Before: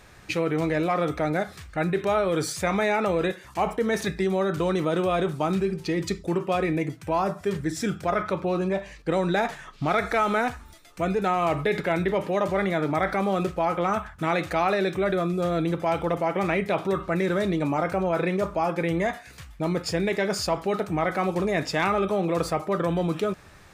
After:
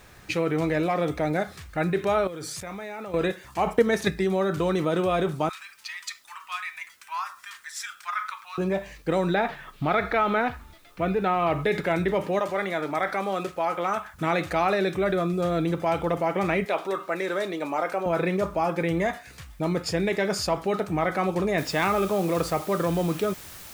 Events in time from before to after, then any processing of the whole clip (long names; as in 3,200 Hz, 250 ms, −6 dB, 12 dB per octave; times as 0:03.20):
0:00.87–0:01.38: parametric band 1,300 Hz −6.5 dB 0.34 octaves
0:02.27–0:03.14: output level in coarse steps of 18 dB
0:03.67–0:04.12: transient designer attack +8 dB, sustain −2 dB
0:05.49–0:08.58: Butterworth high-pass 1,000 Hz 48 dB per octave
0:09.34–0:11.64: low-pass filter 4,100 Hz 24 dB per octave
0:12.39–0:14.14: high-pass filter 480 Hz 6 dB per octave
0:16.65–0:18.06: high-pass filter 410 Hz
0:21.58: noise floor change −63 dB −44 dB